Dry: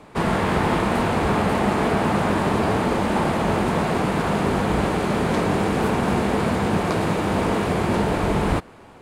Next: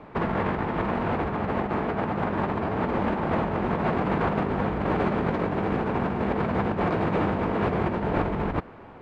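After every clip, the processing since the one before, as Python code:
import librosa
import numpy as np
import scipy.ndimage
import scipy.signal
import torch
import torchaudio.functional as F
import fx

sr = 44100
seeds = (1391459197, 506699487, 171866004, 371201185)

y = scipy.signal.sosfilt(scipy.signal.butter(2, 2200.0, 'lowpass', fs=sr, output='sos'), x)
y = fx.over_compress(y, sr, threshold_db=-23.0, ratio=-0.5)
y = y * 10.0 ** (-2.0 / 20.0)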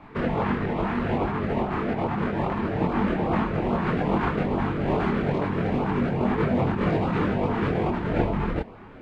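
y = fx.filter_lfo_notch(x, sr, shape='saw_up', hz=2.4, low_hz=430.0, high_hz=2000.0, q=1.4)
y = fx.chorus_voices(y, sr, voices=6, hz=0.65, base_ms=25, depth_ms=4.5, mix_pct=50)
y = y * 10.0 ** (5.0 / 20.0)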